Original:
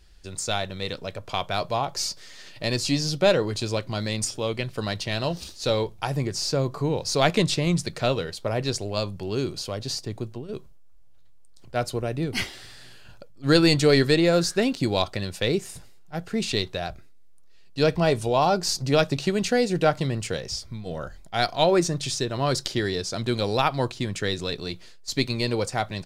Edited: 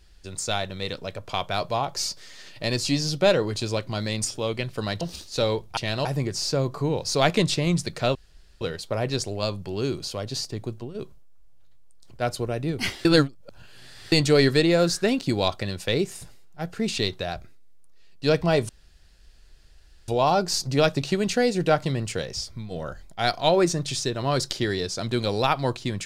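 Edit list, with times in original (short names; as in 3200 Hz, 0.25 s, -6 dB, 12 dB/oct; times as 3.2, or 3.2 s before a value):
5.01–5.29 move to 6.05
8.15 insert room tone 0.46 s
12.59–13.66 reverse
18.23 insert room tone 1.39 s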